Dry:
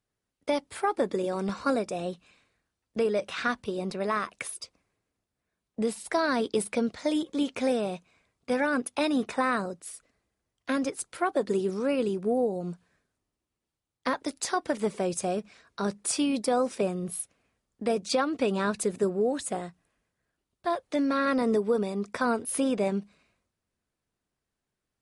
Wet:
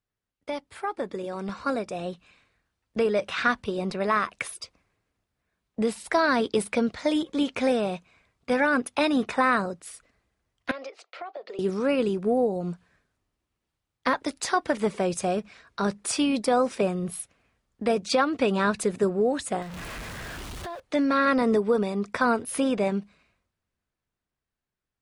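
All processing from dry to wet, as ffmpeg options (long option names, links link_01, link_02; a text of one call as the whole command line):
ffmpeg -i in.wav -filter_complex "[0:a]asettb=1/sr,asplit=3[link_01][link_02][link_03];[link_01]atrim=end=10.714[link_04];[link_02]atrim=start=10.71:end=11.59,asetpts=PTS-STARTPTS,afade=type=in:duration=0.004:curve=qsin,afade=type=out:start_time=0.876:duration=0.004:curve=qsin,agate=range=-33dB:threshold=-54dB:ratio=3:release=100:detection=peak,highpass=frequency=480:width=0.5412,highpass=frequency=480:width=1.3066,equalizer=frequency=650:width_type=q:width=4:gain=5,equalizer=frequency=970:width_type=q:width=4:gain=-7,equalizer=frequency=1600:width_type=q:width=4:gain=-9,equalizer=frequency=3500:width_type=q:width=4:gain=-4,lowpass=frequency=4500:width=0.5412,lowpass=frequency=4500:width=1.3066,acompressor=threshold=-37dB:ratio=12:attack=3.2:release=140:knee=1:detection=peak[link_05];[link_03]atrim=start=11.586[link_06];[link_04][link_05]acrossfade=duration=0.004:curve1=hsin:curve2=qsin[link_07];[link_07][link_06]acrossfade=duration=0.004:curve1=qsin:curve2=hsin,asettb=1/sr,asplit=3[link_08][link_09][link_10];[link_08]atrim=end=19.624[link_11];[link_09]atrim=start=19.62:end=20.8,asetpts=PTS-STARTPTS,afade=type=in:duration=0.004:curve=qsin,afade=type=out:start_time=1.176:duration=0.004:curve=qsin,aeval=exprs='val(0)+0.5*0.0168*sgn(val(0))':channel_layout=same,acompressor=threshold=-38dB:ratio=5:attack=3.2:release=140:knee=1:detection=peak[link_12];[link_10]atrim=start=20.796[link_13];[link_11][link_12]acrossfade=duration=0.004:curve1=hsin:curve2=qsin[link_14];[link_14][link_13]acrossfade=duration=0.004:curve1=qsin:curve2=hsin,highshelf=frequency=4500:gain=-11,dynaudnorm=framelen=310:gausssize=13:maxgain=8.5dB,equalizer=frequency=340:width=0.39:gain=-6" out.wav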